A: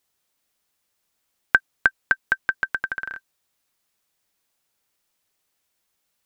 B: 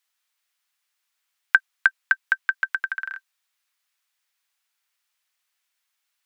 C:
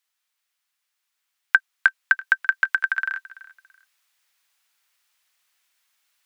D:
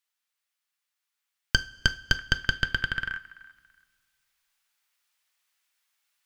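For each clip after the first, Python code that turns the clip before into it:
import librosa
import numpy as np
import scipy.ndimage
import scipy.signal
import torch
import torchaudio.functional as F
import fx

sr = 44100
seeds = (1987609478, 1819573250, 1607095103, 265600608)

y1 = scipy.signal.sosfilt(scipy.signal.butter(2, 1500.0, 'highpass', fs=sr, output='sos'), x)
y1 = fx.high_shelf(y1, sr, hz=3500.0, db=-9.0)
y1 = y1 * librosa.db_to_amplitude(4.5)
y2 = fx.rider(y1, sr, range_db=10, speed_s=2.0)
y2 = fx.echo_feedback(y2, sr, ms=334, feedback_pct=24, wet_db=-19.0)
y2 = y2 * librosa.db_to_amplitude(2.5)
y3 = fx.tracing_dist(y2, sr, depth_ms=0.25)
y3 = fx.rev_double_slope(y3, sr, seeds[0], early_s=0.32, late_s=2.0, knee_db=-19, drr_db=10.5)
y3 = y3 * librosa.db_to_amplitude(-6.0)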